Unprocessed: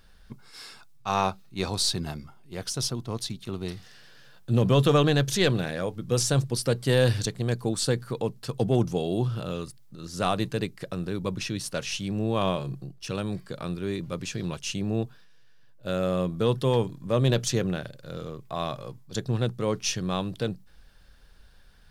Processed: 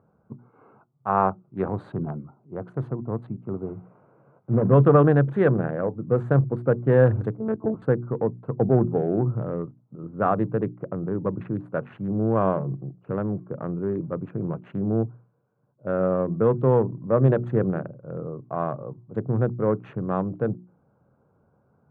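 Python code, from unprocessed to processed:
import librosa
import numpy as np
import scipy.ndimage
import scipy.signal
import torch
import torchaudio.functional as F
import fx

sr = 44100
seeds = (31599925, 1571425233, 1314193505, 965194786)

y = fx.cvsd(x, sr, bps=16000, at=(3.53, 4.73))
y = fx.lpc_monotone(y, sr, seeds[0], pitch_hz=220.0, order=10, at=(7.38, 7.82))
y = fx.wiener(y, sr, points=25)
y = scipy.signal.sosfilt(scipy.signal.ellip(3, 1.0, 50, [110.0, 1500.0], 'bandpass', fs=sr, output='sos'), y)
y = fx.hum_notches(y, sr, base_hz=60, count=6)
y = y * librosa.db_to_amplitude(5.5)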